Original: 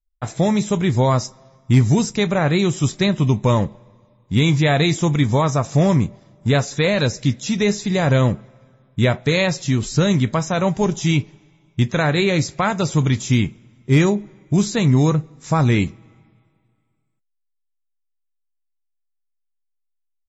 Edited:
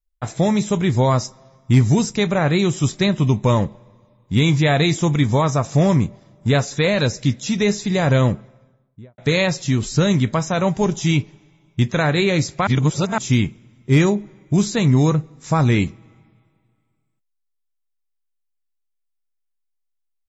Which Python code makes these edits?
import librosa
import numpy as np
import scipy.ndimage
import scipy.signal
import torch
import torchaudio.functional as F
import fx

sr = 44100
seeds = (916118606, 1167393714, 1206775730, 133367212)

y = fx.studio_fade_out(x, sr, start_s=8.31, length_s=0.87)
y = fx.edit(y, sr, fx.reverse_span(start_s=12.67, length_s=0.51), tone=tone)